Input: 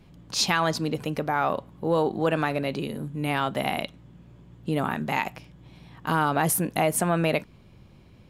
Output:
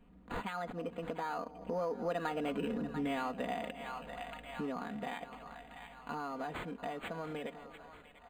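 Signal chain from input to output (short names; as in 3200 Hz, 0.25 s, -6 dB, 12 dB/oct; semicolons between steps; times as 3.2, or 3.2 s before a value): Doppler pass-by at 2.72, 26 m/s, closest 9.4 m; bell 130 Hz -7.5 dB 0.9 oct; notch 3300 Hz; comb 4.2 ms, depth 74%; split-band echo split 730 Hz, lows 0.198 s, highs 0.69 s, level -16 dB; compressor 3:1, threshold -47 dBFS, peak gain reduction 17 dB; decimation joined by straight lines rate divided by 8×; gain +9 dB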